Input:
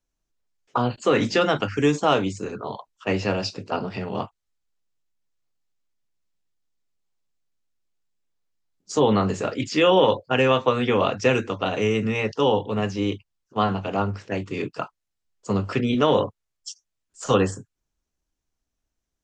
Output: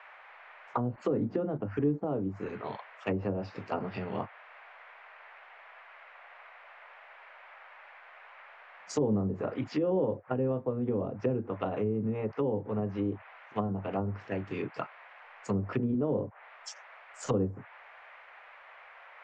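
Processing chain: band noise 580–2300 Hz -46 dBFS; treble ducked by the level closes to 420 Hz, closed at -18.5 dBFS; gain -6.5 dB

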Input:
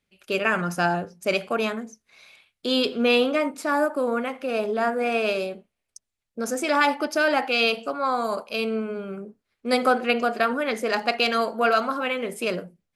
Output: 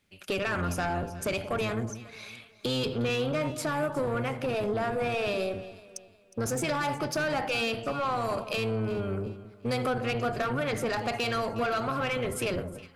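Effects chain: octaver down 1 oct, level +2 dB; low shelf 170 Hz -5 dB; in parallel at +0.5 dB: limiter -17.5 dBFS, peak gain reduction 11.5 dB; on the sum: compressor 2.5:1, threshold -28 dBFS, peak gain reduction 11 dB; soft clip -23 dBFS, distortion -15 dB; on a send: echo with dull and thin repeats by turns 0.181 s, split 1100 Hz, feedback 56%, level -12 dB

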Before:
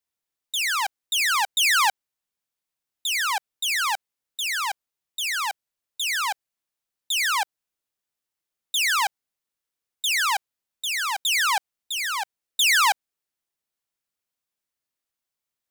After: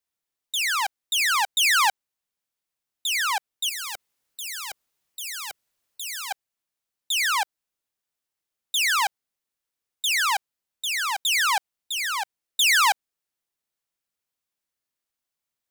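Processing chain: 3.69–6.31 spectral compressor 2:1

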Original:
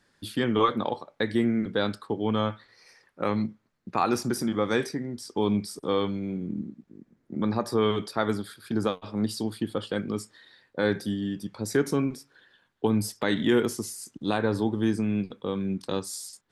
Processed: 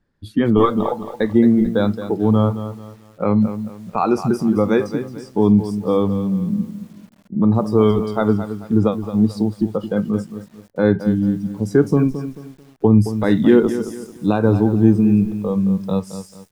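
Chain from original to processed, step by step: spectral noise reduction 13 dB; tilt -3.5 dB/oct; lo-fi delay 0.22 s, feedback 35%, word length 8-bit, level -11 dB; gain +5 dB

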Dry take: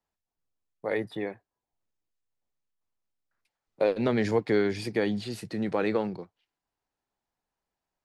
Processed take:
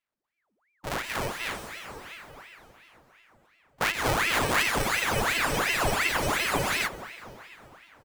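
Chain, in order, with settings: sample sorter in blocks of 128 samples; loudspeakers at several distances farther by 44 m -11 dB, 82 m -1 dB; plate-style reverb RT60 4.2 s, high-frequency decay 0.8×, pre-delay 0.105 s, DRR 2 dB; spectral freeze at 4.86, 2.00 s; ring modulator with a swept carrier 1300 Hz, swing 85%, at 2.8 Hz

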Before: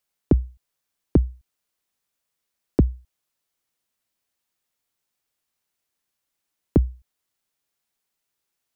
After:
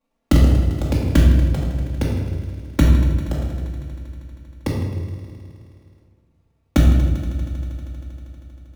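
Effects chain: in parallel at +1.5 dB: limiter -18.5 dBFS, peak gain reduction 11.5 dB; on the sum: sample-rate reducer 1600 Hz, jitter 20%; envelope flanger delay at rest 4.4 ms, full sweep at -16 dBFS; on a send: multi-head echo 79 ms, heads second and third, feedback 73%, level -15 dB; on the sum: echoes that change speed 0.151 s, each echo +7 st, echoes 2, each echo -6 dB; shoebox room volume 680 m³, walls mixed, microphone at 2.3 m; gain -3 dB

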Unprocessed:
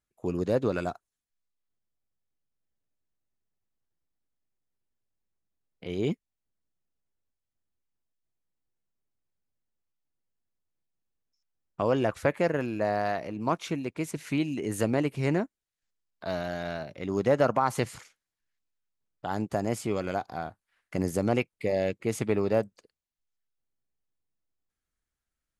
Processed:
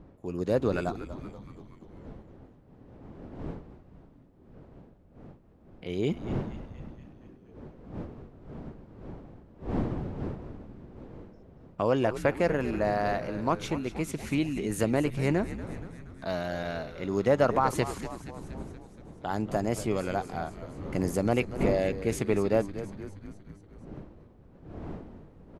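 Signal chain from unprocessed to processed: opening faded in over 0.52 s; wind noise 310 Hz -42 dBFS; frequency-shifting echo 0.237 s, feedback 63%, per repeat -100 Hz, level -12.5 dB

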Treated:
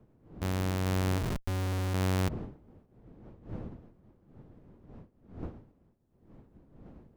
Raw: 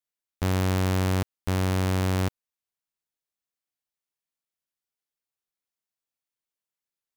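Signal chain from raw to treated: wind noise 250 Hz -40 dBFS; 1.18–1.94 Schmitt trigger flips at -36 dBFS; random-step tremolo; gain -3.5 dB

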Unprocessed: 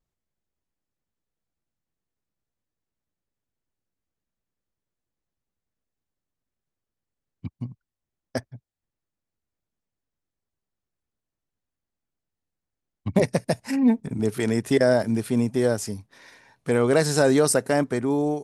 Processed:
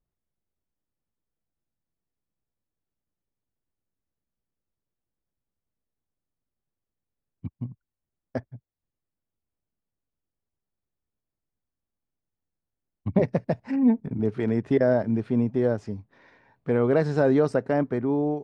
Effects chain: tape spacing loss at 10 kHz 37 dB

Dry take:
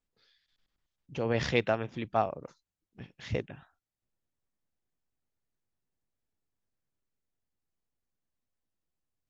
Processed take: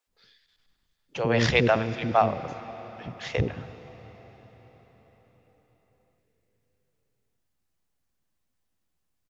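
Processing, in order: bands offset in time highs, lows 70 ms, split 420 Hz; on a send at -13.5 dB: reverb RT60 5.6 s, pre-delay 74 ms; on the sum: gain +8 dB

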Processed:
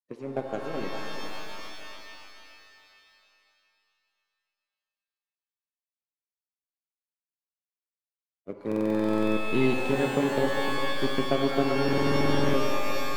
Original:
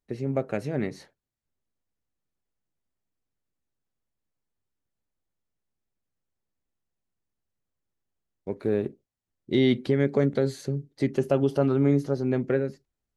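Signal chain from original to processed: bin magnitudes rounded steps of 30 dB; HPF 150 Hz 24 dB/oct; power-law curve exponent 1.4; on a send: darkening echo 0.402 s, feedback 25%, level -10 dB; on the sum: stuck buffer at 8.67/11.84, samples 2048, times 14; shimmer reverb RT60 2.7 s, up +12 st, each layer -2 dB, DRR 5 dB

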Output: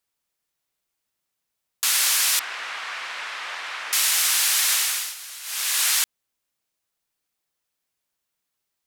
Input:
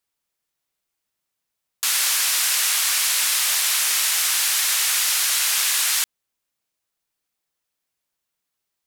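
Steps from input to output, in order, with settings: 2.39–3.93 LPF 1800 Hz 12 dB/oct; 4.73–5.85 dip -17.5 dB, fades 0.42 s

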